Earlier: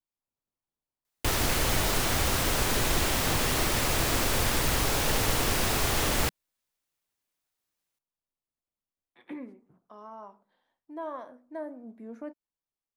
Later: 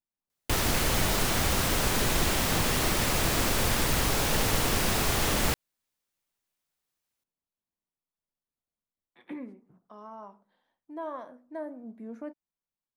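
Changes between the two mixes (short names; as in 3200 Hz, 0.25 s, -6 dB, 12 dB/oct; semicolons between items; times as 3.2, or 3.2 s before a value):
background: entry -0.75 s; master: add bell 190 Hz +4.5 dB 0.47 oct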